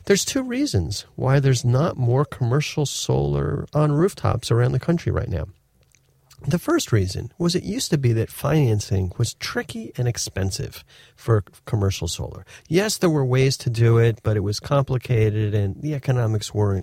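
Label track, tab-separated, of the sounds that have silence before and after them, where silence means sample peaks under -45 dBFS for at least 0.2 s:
5.830000	5.970000	sound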